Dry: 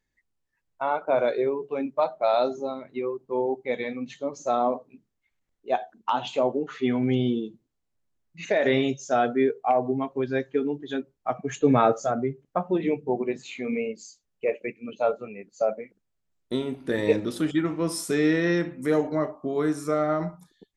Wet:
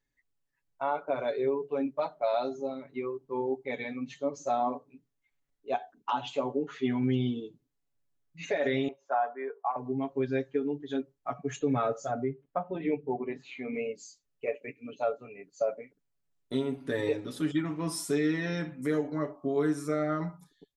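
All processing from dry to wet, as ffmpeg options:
-filter_complex "[0:a]asettb=1/sr,asplit=3[s0][s1][s2];[s0]atrim=end=8.884[s3];[s1]atrim=start=8.88:end=9.76,asetpts=PTS-STARTPTS,afade=t=in:d=0.004:c=qsin,afade=t=out:st=0.876:d=0.004:c=qsin,asuperpass=centerf=980:order=4:qfactor=0.83,equalizer=f=1000:w=2.6:g=13.5[s4];[s2]atrim=start=9.756[s5];[s3][s4]acrossfade=d=0.004:c1=hsin:c2=qsin[s6];[s6][s5]acrossfade=d=0.004:c1=qsin:c2=hsin,asettb=1/sr,asplit=3[s7][s8][s9];[s7]atrim=end=12.254[s10];[s8]atrim=start=12.25:end=13.75,asetpts=PTS-STARTPTS,afade=t=in:d=0.004:c=qsin,afade=t=out:st=1.496:d=0.004:c=qsin,lowpass=3100,equalizer=f=120:t=o:w=1.6:g=-4[s11];[s9]atrim=start=13.746[s12];[s10][s11]acrossfade=d=0.004:c1=hsin:c2=qsin[s13];[s13][s12]acrossfade=d=0.004:c1=qsin:c2=hsin,aecho=1:1:7.1:0.81,alimiter=limit=0.237:level=0:latency=1:release=456,volume=0.501"

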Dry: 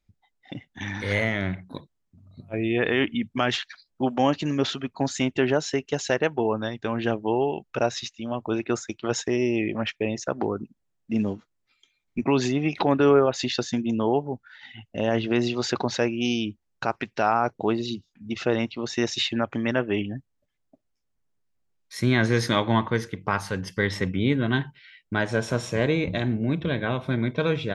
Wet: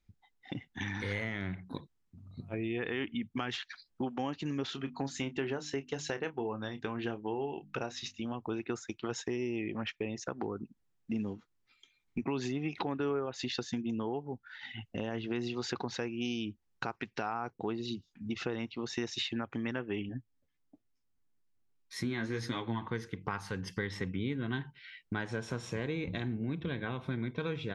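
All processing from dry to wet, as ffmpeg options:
-filter_complex "[0:a]asettb=1/sr,asplit=3[s0][s1][s2];[s0]atrim=end=4.704[s3];[s1]atrim=start=4.7:end=8.25,asetpts=PTS-STARTPTS,afade=t=in:d=0.004:c=qsin,afade=t=out:st=3.546:d=0.004:c=qsin,bandreject=f=50:t=h:w=6,bandreject=f=100:t=h:w=6,bandreject=f=150:t=h:w=6,bandreject=f=200:t=h:w=6,bandreject=f=250:t=h:w=6,bandreject=f=300:t=h:w=6,asplit=2[s4][s5];[s5]adelay=29,volume=0.251[s6];[s4][s6]amix=inputs=2:normalize=0,atrim=end_sample=156555[s7];[s2]atrim=start=8.246[s8];[s3][s7]acrossfade=d=0.004:c1=hsin:c2=qsin[s9];[s9][s8]acrossfade=d=0.004:c1=qsin:c2=hsin,asettb=1/sr,asplit=3[s10][s11][s12];[s10]atrim=end=20.094[s13];[s11]atrim=start=20.09:end=22.82,asetpts=PTS-STARTPTS,afade=t=in:d=0.004:c=qsin,afade=t=out:st=2.726:d=0.004:c=qsin,equalizer=f=280:w=4.4:g=5.5,flanger=delay=6.6:depth=7.5:regen=36:speed=1.2:shape=triangular[s14];[s12]atrim=start=22.816[s15];[s13][s14]acrossfade=d=0.004:c1=hsin:c2=qsin[s16];[s16][s15]acrossfade=d=0.004:c1=qsin:c2=hsin,highshelf=f=7900:g=-6,acompressor=threshold=0.0178:ratio=3,equalizer=f=610:w=6.1:g=-10.5"

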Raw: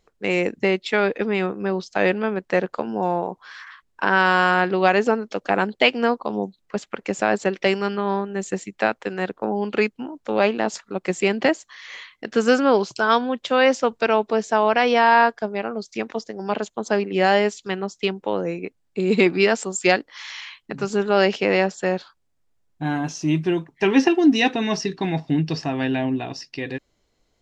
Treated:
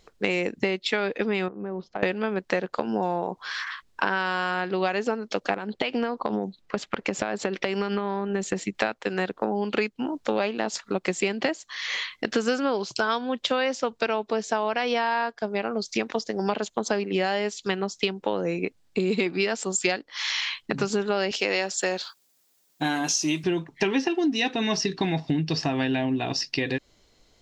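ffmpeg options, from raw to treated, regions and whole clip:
-filter_complex "[0:a]asettb=1/sr,asplit=3[s0][s1][s2];[s0]atrim=end=1.484[s3];[s1]atrim=start=1.48:end=2.03,asetpts=PTS-STARTPTS,afade=t=in:d=0.004:c=qsin,afade=t=out:st=0.546:d=0.004:c=qsin,lowpass=1100,acompressor=threshold=0.0178:ratio=6:attack=3.2:release=140:knee=1:detection=peak[s4];[s2]atrim=start=2.026[s5];[s3][s4]acrossfade=d=0.004:c1=hsin:c2=qsin[s6];[s6][s5]acrossfade=d=0.004:c1=qsin:c2=hsin,asettb=1/sr,asplit=3[s7][s8][s9];[s7]atrim=end=5.544[s10];[s8]atrim=start=5.54:end=8.75,asetpts=PTS-STARTPTS,afade=t=in:d=0.004:c=qsin,afade=t=out:st=3.206:d=0.004:c=qsin,highshelf=f=4800:g=-9.5,acompressor=threshold=0.0708:ratio=12:attack=3.2:release=140:knee=1:detection=peak[s11];[s9]atrim=start=8.746[s12];[s10][s11]acrossfade=d=0.004:c1=hsin:c2=qsin[s13];[s13][s12]acrossfade=d=0.004:c1=qsin:c2=hsin,asettb=1/sr,asplit=3[s14][s15][s16];[s14]atrim=end=21.314[s17];[s15]atrim=start=21.31:end=23.44,asetpts=PTS-STARTPTS,afade=t=in:d=0.004:c=qsin,afade=t=out:st=2.126:d=0.004:c=qsin,highpass=250,aemphasis=mode=production:type=75fm[s18];[s16]atrim=start=23.436[s19];[s17][s18]acrossfade=d=0.004:c1=hsin:c2=qsin[s20];[s20][s19]acrossfade=d=0.004:c1=qsin:c2=hsin,equalizer=f=4300:t=o:w=1.4:g=5,acompressor=threshold=0.0355:ratio=6,volume=2.11"

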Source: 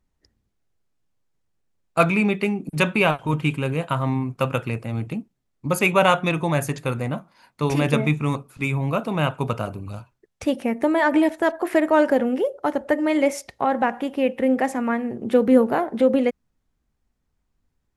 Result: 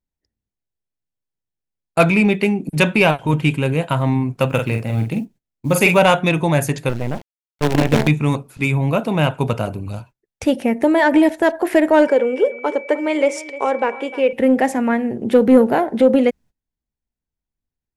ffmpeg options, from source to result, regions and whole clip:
-filter_complex "[0:a]asettb=1/sr,asplit=3[s0][s1][s2];[s0]atrim=end=4.494[s3];[s1]atrim=start=4.49:end=5.98,asetpts=PTS-STARTPTS,afade=t=in:d=0.004:c=qsin,afade=t=out:st=1.486:d=0.004:c=qsin,acrusher=bits=9:mode=log:mix=0:aa=0.000001,asplit=2[s4][s5];[s5]adelay=45,volume=0.501[s6];[s4][s6]amix=inputs=2:normalize=0,atrim=end_sample=65709[s7];[s2]atrim=start=5.976[s8];[s3][s7]acrossfade=d=0.004:c1=hsin:c2=qsin[s9];[s9][s8]acrossfade=d=0.004:c1=qsin:c2=hsin,asettb=1/sr,asplit=3[s10][s11][s12];[s10]atrim=end=6.894[s13];[s11]atrim=start=6.89:end=8.08,asetpts=PTS-STARTPTS,afade=t=in:d=0.004:c=qsin,afade=t=out:st=1.186:d=0.004:c=qsin,lowpass=f=1900:p=1,acrusher=bits=4:dc=4:mix=0:aa=0.000001,aemphasis=mode=reproduction:type=cd[s14];[s12]atrim=start=8.076[s15];[s13][s14]acrossfade=d=0.004:c1=hsin:c2=qsin[s16];[s16][s15]acrossfade=d=0.004:c1=qsin:c2=hsin,asettb=1/sr,asplit=3[s17][s18][s19];[s17]atrim=end=12.074[s20];[s18]atrim=start=12.07:end=14.33,asetpts=PTS-STARTPTS,afade=t=in:d=0.004:c=qsin,afade=t=out:st=2.256:d=0.004:c=qsin,aeval=exprs='val(0)+0.0112*sin(2*PI*2300*n/s)':c=same,highpass=430,equalizer=f=450:t=q:w=4:g=8,equalizer=f=730:t=q:w=4:g=-9,equalizer=f=1100:t=q:w=4:g=3,equalizer=f=1800:t=q:w=4:g=-7,equalizer=f=4100:t=q:w=4:g=-6,equalizer=f=6200:t=q:w=4:g=-4,lowpass=f=8400:w=0.5412,lowpass=f=8400:w=1.3066,aecho=1:1:304:0.133,atrim=end_sample=99666[s21];[s19]atrim=start=14.326[s22];[s20][s21]acrossfade=d=0.004:c1=hsin:c2=qsin[s23];[s23][s22]acrossfade=d=0.004:c1=qsin:c2=hsin,agate=range=0.112:threshold=0.00501:ratio=16:detection=peak,equalizer=f=1200:w=4.4:g=-7.5,acontrast=48"

